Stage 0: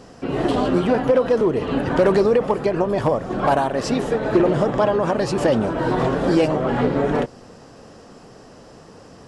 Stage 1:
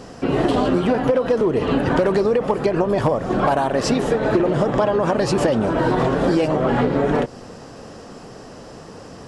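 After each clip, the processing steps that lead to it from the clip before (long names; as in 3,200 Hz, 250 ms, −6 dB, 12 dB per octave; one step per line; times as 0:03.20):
downward compressor, threshold −20 dBFS, peak gain reduction 8.5 dB
level +5.5 dB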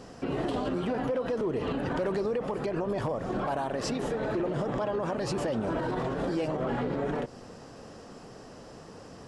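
brickwall limiter −14 dBFS, peak gain reduction 8 dB
level −8.5 dB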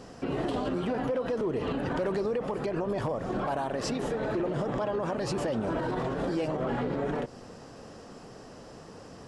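no processing that can be heard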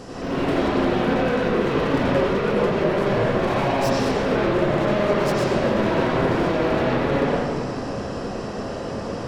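hard clipping −37.5 dBFS, distortion −5 dB
convolution reverb RT60 1.9 s, pre-delay 78 ms, DRR −9 dB
level +8 dB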